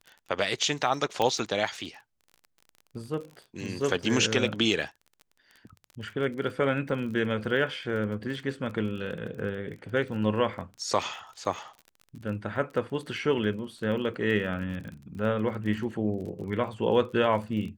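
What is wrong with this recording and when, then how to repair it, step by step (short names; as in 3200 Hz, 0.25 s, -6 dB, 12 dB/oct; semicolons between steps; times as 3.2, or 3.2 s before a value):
crackle 32/s -37 dBFS
1.22 pop -13 dBFS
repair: de-click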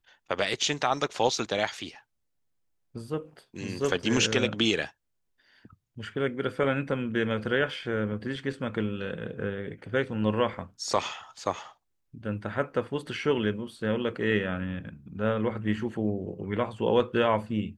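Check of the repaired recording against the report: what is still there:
none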